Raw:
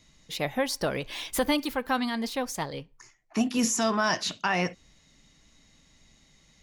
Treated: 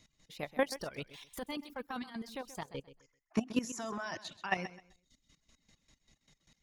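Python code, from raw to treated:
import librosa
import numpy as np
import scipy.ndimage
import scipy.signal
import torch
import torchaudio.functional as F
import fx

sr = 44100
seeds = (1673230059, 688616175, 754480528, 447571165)

y = fx.chopper(x, sr, hz=5.1, depth_pct=60, duty_pct=30)
y = fx.dereverb_blind(y, sr, rt60_s=0.92)
y = fx.transient(y, sr, attack_db=-9, sustain_db=-5, at=(1.06, 2.12))
y = fx.level_steps(y, sr, step_db=13)
y = fx.high_shelf(y, sr, hz=4000.0, db=-7.5, at=(2.67, 4.29))
y = fx.echo_feedback(y, sr, ms=130, feedback_pct=24, wet_db=-15.0)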